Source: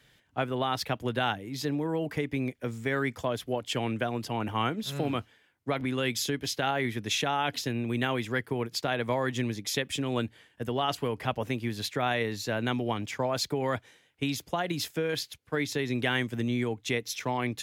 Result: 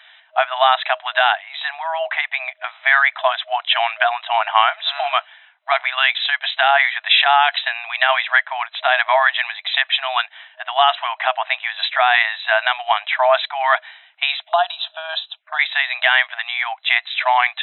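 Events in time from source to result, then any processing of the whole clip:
14.42–15.59 envelope phaser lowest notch 170 Hz, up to 2100 Hz, full sweep at -35 dBFS
whole clip: FFT band-pass 630–4000 Hz; dynamic EQ 1700 Hz, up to +4 dB, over -49 dBFS, Q 4.5; maximiser +18.5 dB; gain -1 dB

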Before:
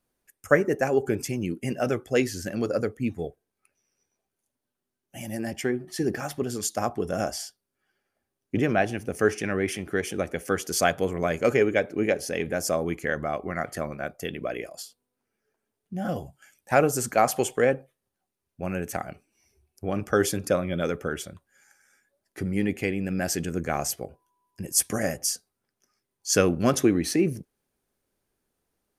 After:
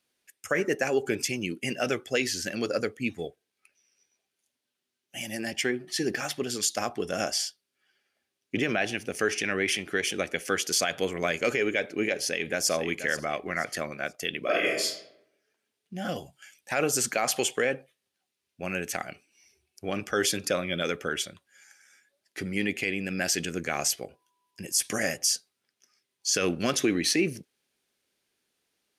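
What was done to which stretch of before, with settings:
12.21–12.71 echo throw 0.48 s, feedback 30%, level -11.5 dB
14.42–14.83 reverb throw, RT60 0.81 s, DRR -7 dB
whole clip: weighting filter D; limiter -12 dBFS; gain -2 dB

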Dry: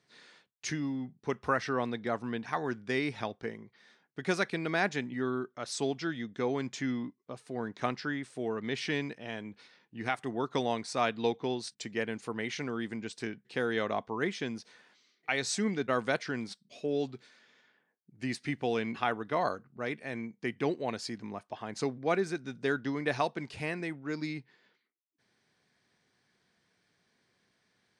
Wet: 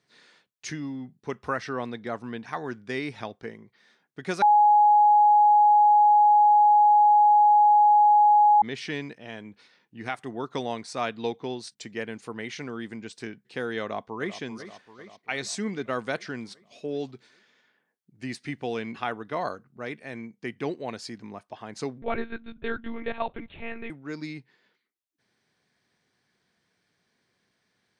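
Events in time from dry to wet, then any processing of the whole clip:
4.42–8.62 bleep 835 Hz -14 dBFS
13.81–14.38 echo throw 0.39 s, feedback 65%, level -12 dB
22.02–23.9 monotone LPC vocoder at 8 kHz 230 Hz

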